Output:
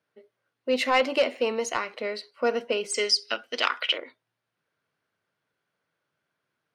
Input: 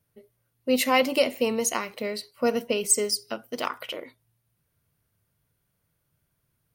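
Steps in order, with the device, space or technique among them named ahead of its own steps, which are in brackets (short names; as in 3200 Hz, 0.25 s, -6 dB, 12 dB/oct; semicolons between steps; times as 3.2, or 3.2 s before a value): intercom (BPF 330–4200 Hz; bell 1500 Hz +4.5 dB 0.45 oct; soft clip -12.5 dBFS, distortion -19 dB); 2.94–3.98 weighting filter D; gain +1 dB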